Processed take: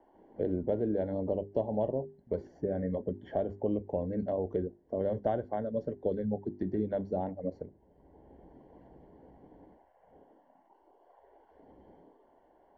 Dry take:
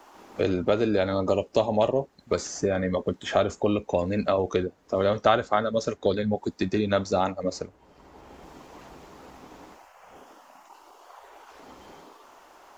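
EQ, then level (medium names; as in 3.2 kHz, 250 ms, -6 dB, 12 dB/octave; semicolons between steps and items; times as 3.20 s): boxcar filter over 35 samples; distance through air 180 m; hum notches 50/100/150/200/250/300/350/400 Hz; -4.5 dB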